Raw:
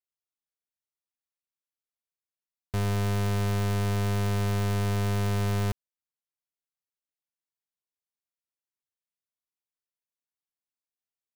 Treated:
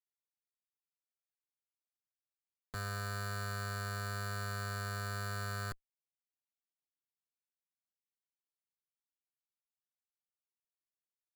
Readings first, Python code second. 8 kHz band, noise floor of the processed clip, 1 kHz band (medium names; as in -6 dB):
-6.0 dB, under -85 dBFS, -6.5 dB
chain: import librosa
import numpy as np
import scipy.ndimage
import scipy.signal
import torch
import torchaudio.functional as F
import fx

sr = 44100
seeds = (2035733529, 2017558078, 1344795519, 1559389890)

y = fx.diode_clip(x, sr, knee_db=-38.0)
y = fx.bandpass_q(y, sr, hz=1600.0, q=2.7)
y = fx.schmitt(y, sr, flips_db=-57.5)
y = y * 10.0 ** (15.5 / 20.0)